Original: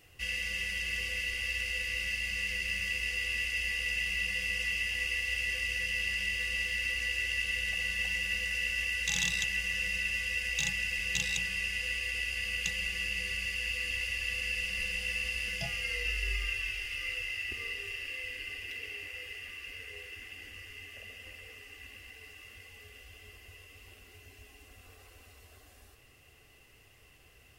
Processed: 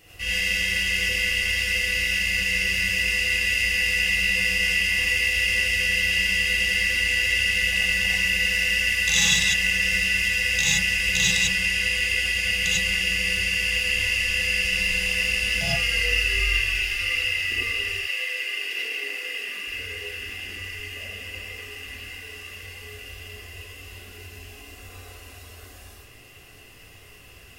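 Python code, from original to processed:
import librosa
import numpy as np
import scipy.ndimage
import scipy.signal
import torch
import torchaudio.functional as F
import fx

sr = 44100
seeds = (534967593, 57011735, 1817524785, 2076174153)

y = fx.highpass(x, sr, hz=fx.line((17.96, 550.0), (19.66, 150.0)), slope=24, at=(17.96, 19.66), fade=0.02)
y = fx.rev_gated(y, sr, seeds[0], gate_ms=120, shape='rising', drr_db=-5.5)
y = y * librosa.db_to_amplitude(5.5)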